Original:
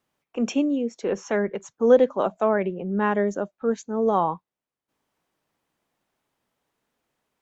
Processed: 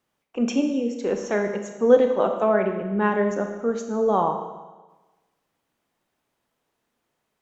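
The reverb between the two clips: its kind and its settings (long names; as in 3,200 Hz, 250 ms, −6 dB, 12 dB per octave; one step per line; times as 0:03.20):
four-comb reverb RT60 1.2 s, combs from 26 ms, DRR 5 dB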